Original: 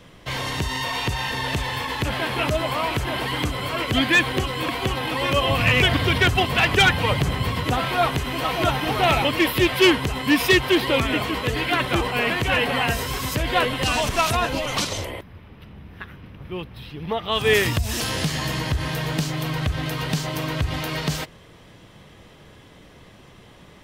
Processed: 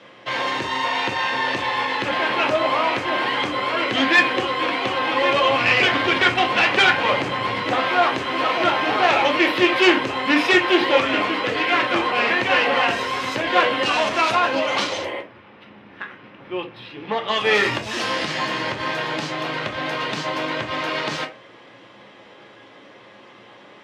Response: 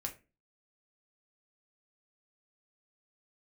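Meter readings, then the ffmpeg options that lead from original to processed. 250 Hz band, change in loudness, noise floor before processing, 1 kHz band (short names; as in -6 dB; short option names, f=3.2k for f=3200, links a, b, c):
0.0 dB, +2.0 dB, -48 dBFS, +4.5 dB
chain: -filter_complex "[0:a]aeval=exprs='clip(val(0),-1,0.0794)':c=same,highpass=360,lowpass=3.8k[a];[1:a]atrim=start_sample=2205[b];[a][b]afir=irnorm=-1:irlink=0,volume=6.5dB"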